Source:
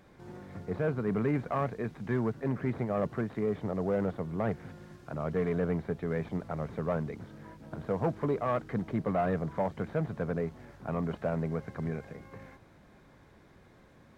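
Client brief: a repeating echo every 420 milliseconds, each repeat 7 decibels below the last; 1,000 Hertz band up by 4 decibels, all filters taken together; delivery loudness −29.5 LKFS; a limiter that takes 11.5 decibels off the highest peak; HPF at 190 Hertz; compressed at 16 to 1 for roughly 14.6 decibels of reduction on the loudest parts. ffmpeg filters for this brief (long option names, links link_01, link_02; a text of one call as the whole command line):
ffmpeg -i in.wav -af "highpass=190,equalizer=frequency=1000:width_type=o:gain=5.5,acompressor=threshold=-38dB:ratio=16,alimiter=level_in=12.5dB:limit=-24dB:level=0:latency=1,volume=-12.5dB,aecho=1:1:420|840|1260|1680|2100:0.447|0.201|0.0905|0.0407|0.0183,volume=17dB" out.wav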